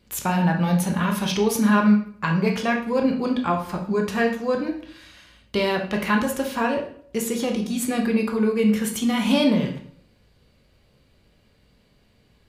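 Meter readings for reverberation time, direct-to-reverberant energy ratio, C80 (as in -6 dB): 0.55 s, 2.0 dB, 11.5 dB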